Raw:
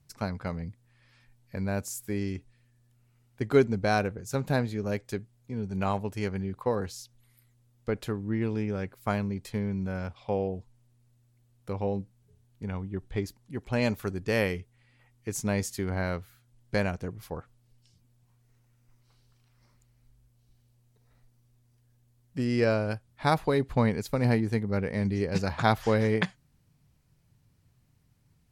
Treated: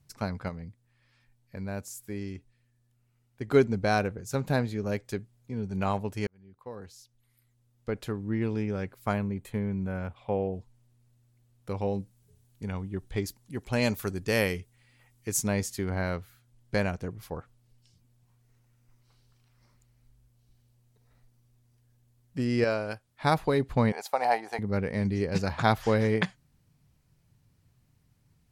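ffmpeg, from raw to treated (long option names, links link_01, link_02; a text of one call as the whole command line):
ffmpeg -i in.wav -filter_complex "[0:a]asettb=1/sr,asplit=3[link_01][link_02][link_03];[link_01]atrim=end=9.134[link_04];[link_02]atrim=start=9.13:end=10.53,asetpts=PTS-STARTPTS,afade=type=in:duration=0.004:curve=qsin,afade=type=out:start_time=1.396:duration=0.004:curve=qsin,equalizer=frequency=5100:width_type=o:width=0.66:gain=-14.5[link_05];[link_03]atrim=start=10.526[link_06];[link_04][link_05]acrossfade=duration=0.004:curve1=hsin:curve2=qsin[link_07];[link_07][link_06]acrossfade=duration=0.004:curve1=qsin:curve2=hsin,asettb=1/sr,asplit=3[link_08][link_09][link_10];[link_08]atrim=end=11.704[link_11];[link_09]atrim=start=11.7:end=15.48,asetpts=PTS-STARTPTS,afade=type=in:duration=0.004:curve=qsin,afade=type=out:start_time=3.776:duration=0.004:curve=qsin,highshelf=frequency=4800:gain=9.5[link_12];[link_10]atrim=start=15.476[link_13];[link_11][link_12]acrossfade=duration=0.004:curve1=hsin:curve2=qsin[link_14];[link_14][link_13]acrossfade=duration=0.004:curve1=qsin:curve2=hsin,asettb=1/sr,asplit=3[link_15][link_16][link_17];[link_15]atrim=end=22.644[link_18];[link_16]atrim=start=22.64:end=23.24,asetpts=PTS-STARTPTS,afade=type=in:duration=0.004:curve=qsin,afade=type=out:start_time=0.596:duration=0.004:curve=qsin,lowshelf=frequency=260:gain=-11[link_19];[link_17]atrim=start=23.236[link_20];[link_18][link_19]acrossfade=duration=0.004:curve1=hsin:curve2=qsin[link_21];[link_21][link_20]acrossfade=duration=0.004:curve1=qsin:curve2=hsin,asettb=1/sr,asplit=3[link_22][link_23][link_24];[link_22]atrim=end=23.924[link_25];[link_23]atrim=start=23.92:end=24.59,asetpts=PTS-STARTPTS,afade=type=in:duration=0.004:curve=qsin,afade=type=out:start_time=0.666:duration=0.004:curve=qsin,highpass=frequency=760:width_type=q:width=6.7[link_26];[link_24]atrim=start=24.586[link_27];[link_25][link_26]acrossfade=duration=0.004:curve1=hsin:curve2=qsin[link_28];[link_28][link_27]acrossfade=duration=0.004:curve1=qsin:curve2=hsin,asplit=4[link_29][link_30][link_31][link_32];[link_29]atrim=end=0.492[link_33];[link_30]atrim=start=0.488:end=3.482,asetpts=PTS-STARTPTS,volume=-5dB[link_34];[link_31]atrim=start=3.478:end=6.27,asetpts=PTS-STARTPTS,afade=type=out:start_time=2.788:duration=0.004:curve=hsin[link_35];[link_32]atrim=start=6.27,asetpts=PTS-STARTPTS,afade=type=in:duration=2.11[link_36];[link_33][link_34]acrossfade=duration=0.004:curve1=hsin:curve2=hsin[link_37];[link_35][link_36]concat=n=2:v=0:a=1[link_38];[link_37][link_38]acrossfade=duration=0.004:curve1=hsin:curve2=hsin" out.wav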